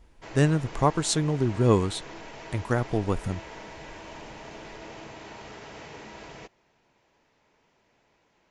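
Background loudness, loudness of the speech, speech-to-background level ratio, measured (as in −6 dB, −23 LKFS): −43.0 LKFS, −26.0 LKFS, 17.0 dB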